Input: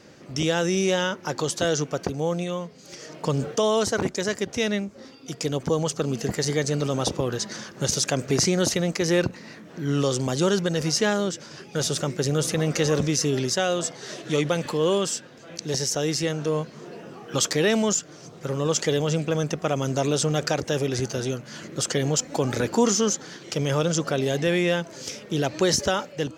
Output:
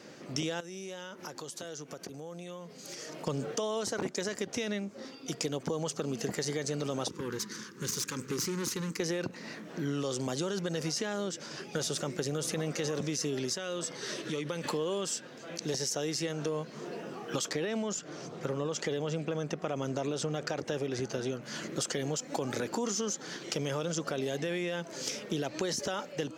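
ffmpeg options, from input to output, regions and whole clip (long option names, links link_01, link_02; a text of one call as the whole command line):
ffmpeg -i in.wav -filter_complex "[0:a]asettb=1/sr,asplit=3[link_01][link_02][link_03];[link_01]atrim=end=0.604[link_04];[link_02]atrim=start=0.6:end=3.27,asetpts=PTS-STARTPTS,afade=type=in:duration=0.004:curve=qsin,afade=type=out:start_time=2.666:duration=0.004:curve=qsin,equalizer=frequency=12000:width=0.8:gain=7.5,acompressor=threshold=-38dB:ratio=10:attack=3.2:release=140:knee=1:detection=peak[link_05];[link_03]atrim=start=3.266[link_06];[link_04][link_05]acrossfade=duration=0.004:curve1=hsin:curve2=qsin[link_07];[link_07][link_06]acrossfade=duration=0.004:curve1=qsin:curve2=hsin,asettb=1/sr,asplit=3[link_08][link_09][link_10];[link_08]atrim=end=7.084[link_11];[link_09]atrim=start=7.08:end=9,asetpts=PTS-STARTPTS,afade=type=in:duration=0.004:curve=qsin,afade=type=out:start_time=1.916:duration=0.004:curve=qsin,equalizer=frequency=2900:width=0.81:gain=-4.5,aeval=exprs='(tanh(17.8*val(0)+0.75)-tanh(0.75))/17.8':channel_layout=same,asuperstop=centerf=670:order=4:qfactor=1.2[link_12];[link_10]atrim=start=8.996[link_13];[link_11][link_12]acrossfade=duration=0.004:curve1=hsin:curve2=qsin[link_14];[link_14][link_13]acrossfade=duration=0.004:curve1=qsin:curve2=hsin,asettb=1/sr,asplit=3[link_15][link_16][link_17];[link_15]atrim=end=13.574[link_18];[link_16]atrim=start=13.57:end=14.64,asetpts=PTS-STARTPTS,afade=type=in:duration=0.004:curve=qsin,afade=type=out:start_time=1.066:duration=0.004:curve=qsin,equalizer=frequency=710:width_type=o:width=0.3:gain=-10.5,bandreject=frequency=7000:width=9.9,acompressor=threshold=-32dB:ratio=2.5:attack=3.2:release=140:knee=1:detection=peak[link_19];[link_17]atrim=start=14.636[link_20];[link_18][link_19]acrossfade=duration=0.004:curve1=hsin:curve2=qsin[link_21];[link_21][link_20]acrossfade=duration=0.004:curve1=qsin:curve2=hsin,asettb=1/sr,asplit=3[link_22][link_23][link_24];[link_22]atrim=end=17.484[link_25];[link_23]atrim=start=17.48:end=21.42,asetpts=PTS-STARTPTS,afade=type=in:duration=0.004:curve=qsin,afade=type=out:start_time=3.936:duration=0.004:curve=qsin,aemphasis=mode=reproduction:type=cd,acompressor=mode=upward:threshold=-35dB:ratio=2.5:attack=3.2:release=140:knee=2.83:detection=peak[link_26];[link_24]atrim=start=21.416[link_27];[link_25][link_26]acrossfade=duration=0.004:curve1=hsin:curve2=qsin[link_28];[link_28][link_27]acrossfade=duration=0.004:curve1=qsin:curve2=hsin,highpass=160,alimiter=limit=-15.5dB:level=0:latency=1:release=26,acompressor=threshold=-30dB:ratio=6" out.wav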